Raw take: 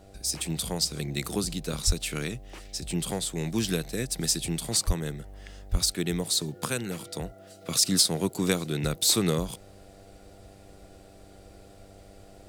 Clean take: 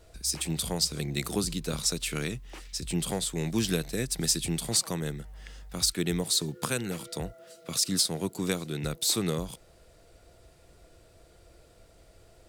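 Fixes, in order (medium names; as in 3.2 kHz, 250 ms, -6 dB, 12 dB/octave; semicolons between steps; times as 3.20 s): de-hum 98 Hz, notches 8; de-plosive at 1.86/4.86/5.71 s; trim 0 dB, from 7.61 s -4 dB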